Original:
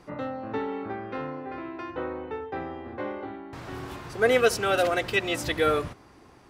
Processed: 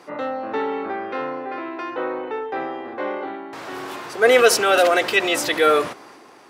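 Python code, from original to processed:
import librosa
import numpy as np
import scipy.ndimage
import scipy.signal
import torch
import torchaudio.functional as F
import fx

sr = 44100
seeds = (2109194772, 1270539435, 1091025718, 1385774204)

y = scipy.signal.sosfilt(scipy.signal.butter(2, 350.0, 'highpass', fs=sr, output='sos'), x)
y = fx.transient(y, sr, attack_db=-2, sustain_db=4)
y = y * librosa.db_to_amplitude(8.5)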